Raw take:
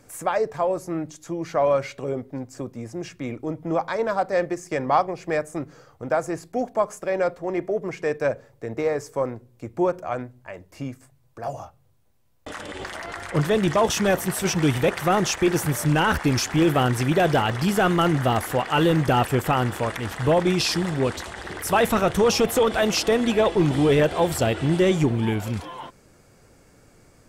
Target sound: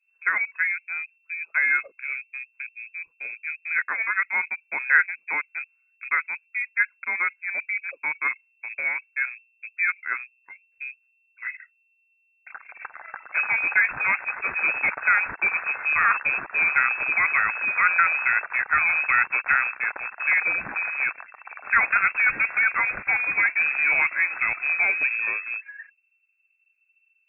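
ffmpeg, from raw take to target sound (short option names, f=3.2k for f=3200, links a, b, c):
-af "anlmdn=39.8,equalizer=f=1.2k:t=o:w=0.61:g=11,lowpass=f=2.3k:t=q:w=0.5098,lowpass=f=2.3k:t=q:w=0.6013,lowpass=f=2.3k:t=q:w=0.9,lowpass=f=2.3k:t=q:w=2.563,afreqshift=-2700,volume=-4dB"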